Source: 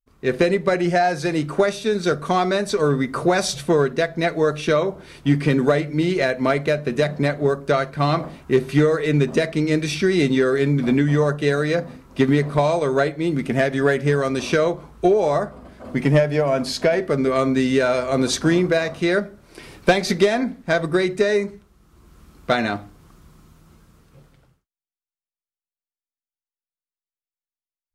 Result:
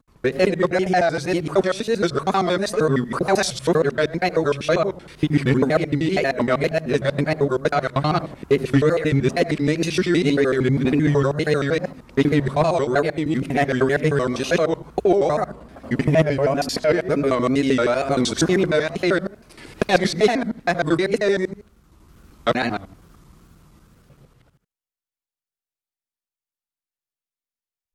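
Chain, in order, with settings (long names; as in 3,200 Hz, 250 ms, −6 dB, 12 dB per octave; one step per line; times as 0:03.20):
reversed piece by piece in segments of 78 ms
tape wow and flutter 130 cents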